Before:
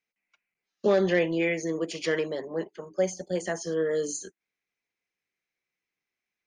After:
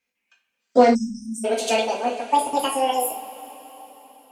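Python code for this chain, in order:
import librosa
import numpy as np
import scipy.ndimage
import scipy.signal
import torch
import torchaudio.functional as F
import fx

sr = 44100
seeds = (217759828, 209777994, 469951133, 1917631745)

y = fx.speed_glide(x, sr, from_pct=103, to_pct=197)
y = fx.rev_double_slope(y, sr, seeds[0], early_s=0.33, late_s=4.4, knee_db=-21, drr_db=-1.5)
y = fx.spec_erase(y, sr, start_s=0.95, length_s=0.5, low_hz=300.0, high_hz=5000.0)
y = F.gain(torch.from_numpy(y), 4.5).numpy()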